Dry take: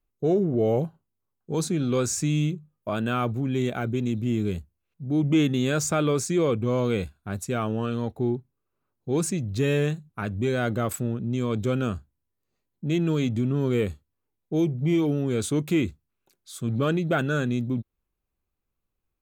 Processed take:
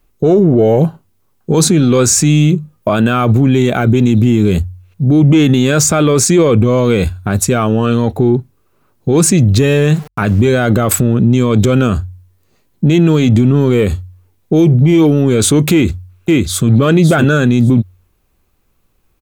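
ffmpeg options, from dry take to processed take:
-filter_complex "[0:a]asettb=1/sr,asplit=3[a][b][c];[a]atrim=end=9.834[d];[b]atrim=start=9.83:end=10.48,asetpts=PTS-STARTPTS,afade=t=in:d=0.004:c=qsin,afade=t=out:st=0.646:d=0.004:c=qsin,aeval=exprs='val(0)*gte(abs(val(0)),0.00299)':c=same[e];[c]atrim=start=10.476[f];[d][e]acrossfade=d=0.004:c1=hsin:c2=qsin[g];[g][f]acrossfade=d=0.004:c1=qsin:c2=hsin,asplit=2[h][i];[i]afade=t=in:st=15.72:d=0.01,afade=t=out:st=16.68:d=0.01,aecho=0:1:560|1120:0.630957|0.0630957[j];[h][j]amix=inputs=2:normalize=0,bandreject=f=45.51:t=h:w=4,bandreject=f=91.02:t=h:w=4,acontrast=90,alimiter=level_in=16.5dB:limit=-1dB:release=50:level=0:latency=1,volume=-1.5dB"

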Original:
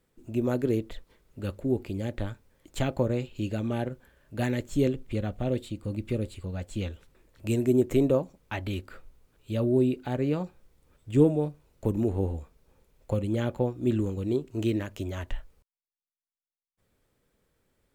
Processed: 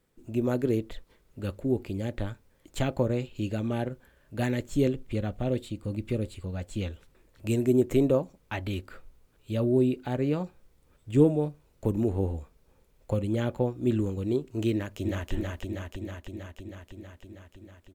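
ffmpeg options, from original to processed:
-filter_complex "[0:a]asplit=2[a][b];[b]afade=t=in:st=14.72:d=0.01,afade=t=out:st=15.32:d=0.01,aecho=0:1:320|640|960|1280|1600|1920|2240|2560|2880|3200|3520|3840:0.794328|0.595746|0.44681|0.335107|0.25133|0.188498|0.141373|0.10603|0.0795225|0.0596419|0.0447314|0.0335486[c];[a][c]amix=inputs=2:normalize=0"

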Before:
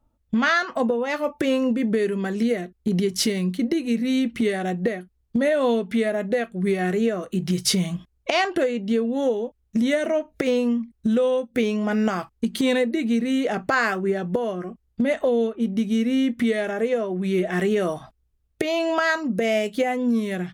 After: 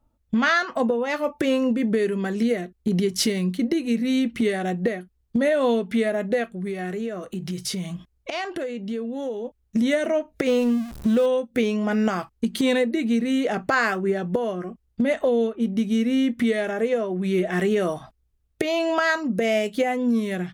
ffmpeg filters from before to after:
-filter_complex "[0:a]asplit=3[a][b][c];[a]afade=t=out:st=6.52:d=0.02[d];[b]acompressor=threshold=-31dB:ratio=2:attack=3.2:release=140:knee=1:detection=peak,afade=t=in:st=6.52:d=0.02,afade=t=out:st=9.44:d=0.02[e];[c]afade=t=in:st=9.44:d=0.02[f];[d][e][f]amix=inputs=3:normalize=0,asettb=1/sr,asplit=3[g][h][i];[g]atrim=end=10.494[j];[h]atrim=start=10.49:end=11.26,asetpts=PTS-STARTPTS,afade=t=in:d=0.004:c=qsin,afade=t=out:st=0.766:d=0.004:c=qsin,aeval=exprs='val(0)+0.5*0.0237*sgn(val(0))':c=same[k];[i]atrim=start=11.256[l];[j][k]acrossfade=d=0.004:c1=hsin:c2=qsin[m];[m][l]acrossfade=d=0.004:c1=qsin:c2=hsin"

